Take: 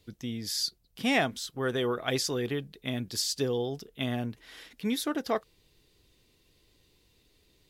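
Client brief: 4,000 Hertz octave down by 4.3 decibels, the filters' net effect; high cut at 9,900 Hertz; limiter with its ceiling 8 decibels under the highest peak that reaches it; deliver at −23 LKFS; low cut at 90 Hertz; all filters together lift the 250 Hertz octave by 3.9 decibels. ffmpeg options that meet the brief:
ffmpeg -i in.wav -af "highpass=90,lowpass=9900,equalizer=frequency=250:width_type=o:gain=4.5,equalizer=frequency=4000:width_type=o:gain=-5.5,volume=9.5dB,alimiter=limit=-11.5dB:level=0:latency=1" out.wav

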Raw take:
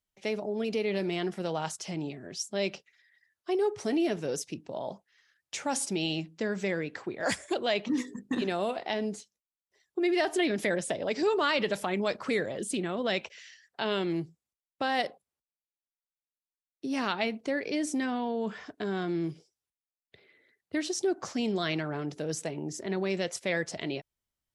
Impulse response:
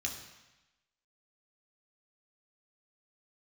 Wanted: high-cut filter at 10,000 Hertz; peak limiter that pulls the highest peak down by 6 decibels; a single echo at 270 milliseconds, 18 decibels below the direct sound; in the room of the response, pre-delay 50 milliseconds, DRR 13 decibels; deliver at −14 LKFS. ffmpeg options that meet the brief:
-filter_complex "[0:a]lowpass=10000,alimiter=limit=-20dB:level=0:latency=1,aecho=1:1:270:0.126,asplit=2[link_01][link_02];[1:a]atrim=start_sample=2205,adelay=50[link_03];[link_02][link_03]afir=irnorm=-1:irlink=0,volume=-14.5dB[link_04];[link_01][link_04]amix=inputs=2:normalize=0,volume=18dB"

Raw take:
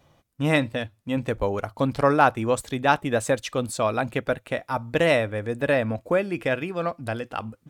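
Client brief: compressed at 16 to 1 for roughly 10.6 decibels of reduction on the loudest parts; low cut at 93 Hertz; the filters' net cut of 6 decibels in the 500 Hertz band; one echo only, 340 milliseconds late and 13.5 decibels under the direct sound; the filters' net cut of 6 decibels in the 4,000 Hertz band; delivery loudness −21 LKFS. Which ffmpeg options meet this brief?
ffmpeg -i in.wav -af "highpass=93,equalizer=frequency=500:width_type=o:gain=-7,equalizer=frequency=4000:width_type=o:gain=-8,acompressor=threshold=-25dB:ratio=16,aecho=1:1:340:0.211,volume=11dB" out.wav

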